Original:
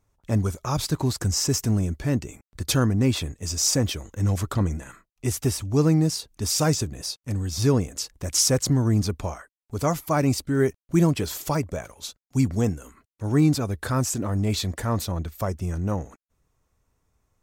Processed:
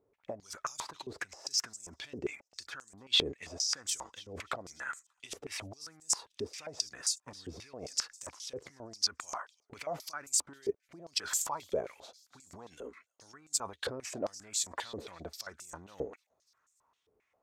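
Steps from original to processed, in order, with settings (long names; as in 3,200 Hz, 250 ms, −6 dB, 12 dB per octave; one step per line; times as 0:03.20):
compressor whose output falls as the input rises −30 dBFS, ratio −1
on a send: delay with a high-pass on its return 293 ms, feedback 48%, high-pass 4,500 Hz, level −17 dB
on the sum: band-pass on a step sequencer 7.5 Hz 430–7,500 Hz
level +5 dB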